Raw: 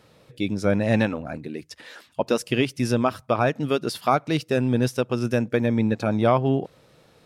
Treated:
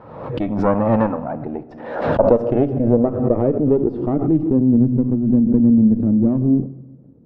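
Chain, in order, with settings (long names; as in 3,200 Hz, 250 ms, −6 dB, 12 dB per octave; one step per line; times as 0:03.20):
in parallel at −3 dB: downward compressor, threshold −29 dBFS, peak gain reduction 14.5 dB
on the sum: harmonic generator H 4 −12 dB, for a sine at −5.5 dBFS
on a send at −12 dB: high-pass filter 99 Hz + convolution reverb RT60 1.2 s, pre-delay 3 ms
on the sum: low-pass filter sweep 1,000 Hz → 260 Hz, 0:00.99–0:04.93
0:02.73–0:03.33: high-frequency loss of the air 300 metres
background raised ahead of every attack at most 60 dB per second
level +1 dB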